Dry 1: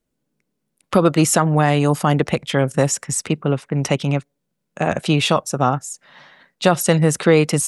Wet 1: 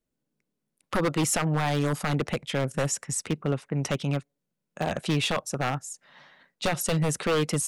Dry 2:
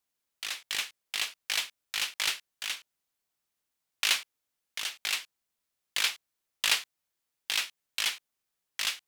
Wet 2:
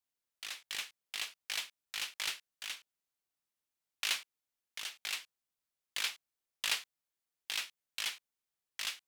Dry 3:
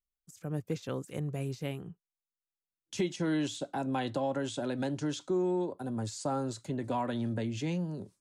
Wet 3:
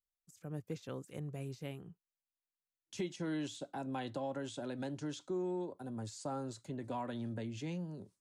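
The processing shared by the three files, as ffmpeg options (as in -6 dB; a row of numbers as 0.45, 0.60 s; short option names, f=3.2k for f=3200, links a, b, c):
-af "aeval=exprs='0.316*(abs(mod(val(0)/0.316+3,4)-2)-1)':c=same,volume=-7.5dB"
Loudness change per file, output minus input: -9.5, -7.5, -7.5 LU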